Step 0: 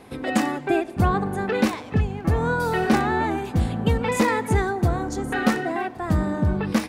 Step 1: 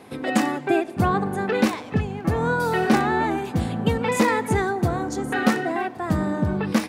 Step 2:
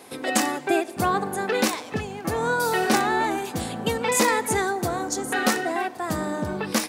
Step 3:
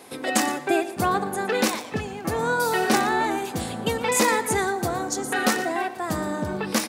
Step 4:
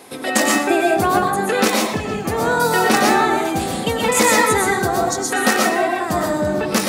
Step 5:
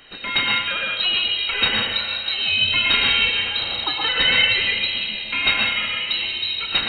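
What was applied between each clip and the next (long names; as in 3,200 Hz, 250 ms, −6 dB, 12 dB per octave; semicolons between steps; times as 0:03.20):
high-pass filter 110 Hz 12 dB per octave; level +1 dB
bass and treble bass −10 dB, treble +10 dB
single-tap delay 117 ms −15 dB
convolution reverb RT60 0.40 s, pre-delay 85 ms, DRR −1 dB; level +4 dB
elliptic band-stop filter 240–900 Hz, stop band 50 dB; voice inversion scrambler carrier 4,000 Hz; spring reverb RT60 2.4 s, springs 32 ms, chirp 20 ms, DRR 6 dB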